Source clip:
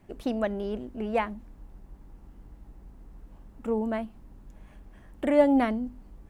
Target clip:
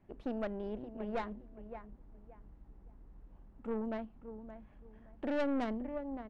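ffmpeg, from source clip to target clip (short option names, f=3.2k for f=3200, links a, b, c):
-filter_complex "[0:a]adynamicsmooth=sensitivity=0.5:basefreq=3.3k,asplit=2[a][b];[b]adelay=571,lowpass=f=1.8k:p=1,volume=-11.5dB,asplit=2[c][d];[d]adelay=571,lowpass=f=1.8k:p=1,volume=0.25,asplit=2[e][f];[f]adelay=571,lowpass=f=1.8k:p=1,volume=0.25[g];[a][c][e][g]amix=inputs=4:normalize=0,aeval=exprs='(tanh(15.8*val(0)+0.55)-tanh(0.55))/15.8':c=same,volume=-6dB"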